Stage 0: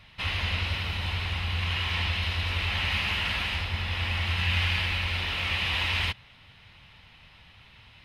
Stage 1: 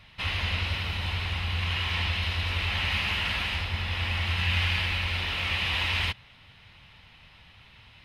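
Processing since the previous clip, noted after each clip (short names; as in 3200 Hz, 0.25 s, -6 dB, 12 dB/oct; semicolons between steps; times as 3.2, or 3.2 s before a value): nothing audible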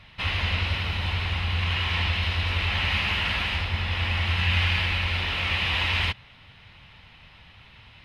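high shelf 6600 Hz -8.5 dB; gain +3.5 dB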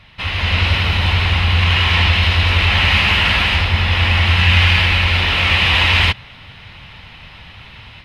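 AGC gain up to 8 dB; in parallel at -10.5 dB: soft clip -12.5 dBFS, distortion -17 dB; on the sum: gain +2 dB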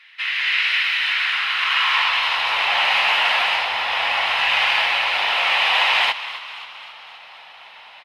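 high-pass sweep 1800 Hz -> 740 Hz, 1–2.71; frequency-shifting echo 0.265 s, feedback 58%, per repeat +61 Hz, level -14 dB; gain -4.5 dB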